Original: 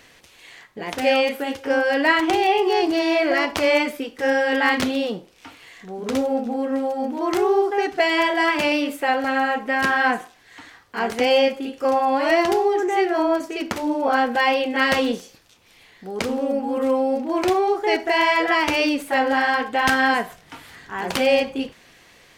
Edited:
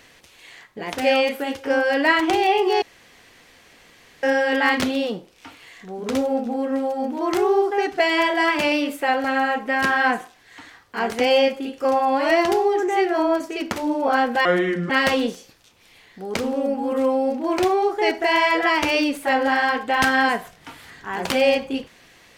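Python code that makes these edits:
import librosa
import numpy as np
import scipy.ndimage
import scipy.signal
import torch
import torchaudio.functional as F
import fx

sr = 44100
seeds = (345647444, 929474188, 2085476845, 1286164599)

y = fx.edit(x, sr, fx.room_tone_fill(start_s=2.82, length_s=1.41),
    fx.speed_span(start_s=14.45, length_s=0.3, speed=0.67), tone=tone)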